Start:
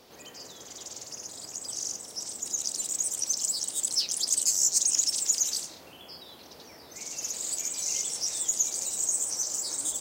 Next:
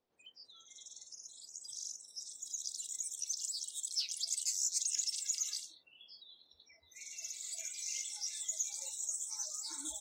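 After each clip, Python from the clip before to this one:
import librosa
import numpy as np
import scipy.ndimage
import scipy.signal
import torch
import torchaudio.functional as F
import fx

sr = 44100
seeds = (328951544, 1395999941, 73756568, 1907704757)

y = fx.lowpass(x, sr, hz=2000.0, slope=6)
y = fx.noise_reduce_blind(y, sr, reduce_db=29)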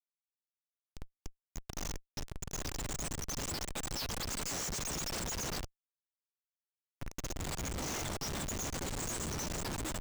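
y = fx.schmitt(x, sr, flips_db=-39.0)
y = y * 10.0 ** (4.5 / 20.0)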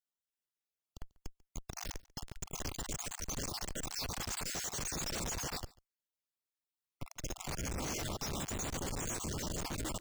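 y = fx.spec_dropout(x, sr, seeds[0], share_pct=24)
y = y + 10.0 ** (-24.0 / 20.0) * np.pad(y, (int(142 * sr / 1000.0), 0))[:len(y)]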